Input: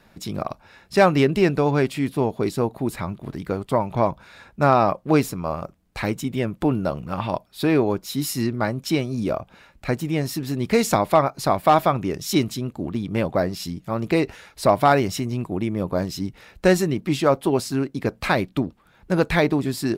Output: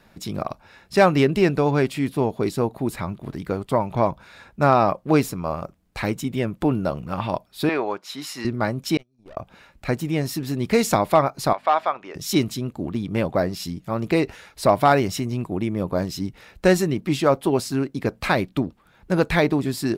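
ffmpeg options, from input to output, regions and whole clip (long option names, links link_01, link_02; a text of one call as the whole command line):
ffmpeg -i in.wav -filter_complex "[0:a]asettb=1/sr,asplit=3[link_01][link_02][link_03];[link_01]atrim=end=7.694[link_04];[link_02]atrim=start=7.69:end=8.45,asetpts=PTS-STARTPTS,afade=type=in:duration=0.004:curve=qsin,afade=type=out:start_time=0.756:duration=0.004:curve=qsin,highpass=930,aemphasis=mode=reproduction:type=riaa,acontrast=31[link_05];[link_03]atrim=start=8.446[link_06];[link_04][link_05]acrossfade=duration=0.004:curve1=hsin:curve2=qsin[link_07];[link_07][link_06]acrossfade=duration=0.004:curve1=qsin:curve2=hsin,asettb=1/sr,asplit=3[link_08][link_09][link_10];[link_08]atrim=end=8.974[link_11];[link_09]atrim=start=8.97:end=9.37,asetpts=PTS-STARTPTS,afade=type=in:duration=0.004:curve=qsin,afade=type=out:start_time=0.396:duration=0.004:curve=qsin,agate=range=-38dB:threshold=-21dB:ratio=16:release=100:detection=peak,aeval=exprs='(tanh(100*val(0)+0.6)-tanh(0.6))/100':channel_layout=same[link_12];[link_10]atrim=start=9.366[link_13];[link_11][link_12]acrossfade=duration=0.004:curve1=hsin:curve2=qsin[link_14];[link_14][link_13]acrossfade=duration=0.004:curve1=qsin:curve2=hsin,asettb=1/sr,asplit=3[link_15][link_16][link_17];[link_15]atrim=end=11.534[link_18];[link_16]atrim=start=11.53:end=12.15,asetpts=PTS-STARTPTS,afade=type=in:duration=0.004:curve=qsin,afade=type=out:start_time=0.616:duration=0.004:curve=qsin,aeval=exprs='val(0)+0.0398*(sin(2*PI*50*n/s)+sin(2*PI*2*50*n/s)/2+sin(2*PI*3*50*n/s)/3+sin(2*PI*4*50*n/s)/4+sin(2*PI*5*50*n/s)/5)':channel_layout=same,highpass=740,lowpass=5500,highshelf=frequency=3600:gain=-9.5[link_19];[link_17]atrim=start=12.146[link_20];[link_18][link_19]acrossfade=duration=0.004:curve1=hsin:curve2=qsin[link_21];[link_21][link_20]acrossfade=duration=0.004:curve1=qsin:curve2=hsin" out.wav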